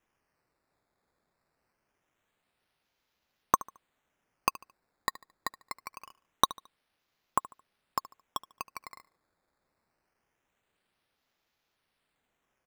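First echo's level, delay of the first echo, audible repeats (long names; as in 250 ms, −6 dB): −19.0 dB, 73 ms, 2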